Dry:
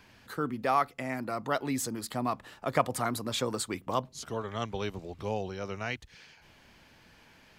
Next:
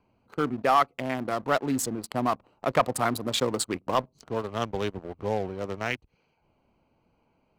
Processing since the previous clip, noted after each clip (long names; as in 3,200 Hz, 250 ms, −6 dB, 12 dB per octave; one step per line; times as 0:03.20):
adaptive Wiener filter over 25 samples
low-shelf EQ 260 Hz −5.5 dB
leveller curve on the samples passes 2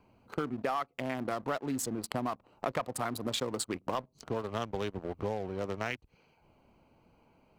downward compressor 6 to 1, threshold −35 dBFS, peak gain reduction 17.5 dB
level +4 dB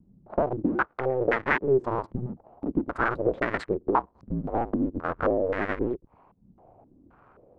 sub-harmonics by changed cycles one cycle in 2, inverted
low-pass on a step sequencer 3.8 Hz 200–1,900 Hz
level +5 dB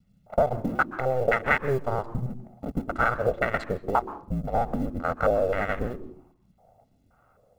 mu-law and A-law mismatch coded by A
convolution reverb RT60 0.45 s, pre-delay 121 ms, DRR 16 dB